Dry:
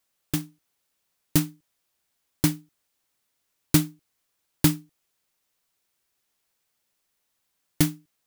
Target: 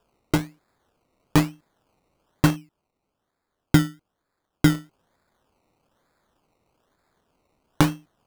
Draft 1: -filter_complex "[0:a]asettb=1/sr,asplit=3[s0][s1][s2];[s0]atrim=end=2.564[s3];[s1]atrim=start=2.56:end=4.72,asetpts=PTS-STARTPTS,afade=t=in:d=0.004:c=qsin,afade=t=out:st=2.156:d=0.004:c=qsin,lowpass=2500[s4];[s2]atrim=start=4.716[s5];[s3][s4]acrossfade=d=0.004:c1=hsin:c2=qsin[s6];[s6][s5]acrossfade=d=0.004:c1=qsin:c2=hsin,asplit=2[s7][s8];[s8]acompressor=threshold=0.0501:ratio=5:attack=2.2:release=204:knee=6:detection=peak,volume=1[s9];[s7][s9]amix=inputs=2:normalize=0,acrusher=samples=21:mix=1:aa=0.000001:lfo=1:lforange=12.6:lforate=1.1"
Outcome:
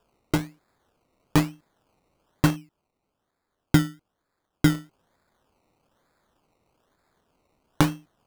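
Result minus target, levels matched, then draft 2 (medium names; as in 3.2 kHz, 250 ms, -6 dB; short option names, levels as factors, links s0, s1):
compression: peak gain reduction +7 dB
-filter_complex "[0:a]asettb=1/sr,asplit=3[s0][s1][s2];[s0]atrim=end=2.564[s3];[s1]atrim=start=2.56:end=4.72,asetpts=PTS-STARTPTS,afade=t=in:d=0.004:c=qsin,afade=t=out:st=2.156:d=0.004:c=qsin,lowpass=2500[s4];[s2]atrim=start=4.716[s5];[s3][s4]acrossfade=d=0.004:c1=hsin:c2=qsin[s6];[s6][s5]acrossfade=d=0.004:c1=qsin:c2=hsin,asplit=2[s7][s8];[s8]acompressor=threshold=0.141:ratio=5:attack=2.2:release=204:knee=6:detection=peak,volume=1[s9];[s7][s9]amix=inputs=2:normalize=0,acrusher=samples=21:mix=1:aa=0.000001:lfo=1:lforange=12.6:lforate=1.1"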